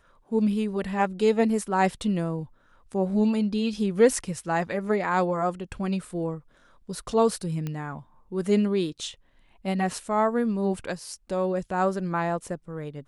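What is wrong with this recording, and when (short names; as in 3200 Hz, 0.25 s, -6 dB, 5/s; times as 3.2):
7.67 pop -19 dBFS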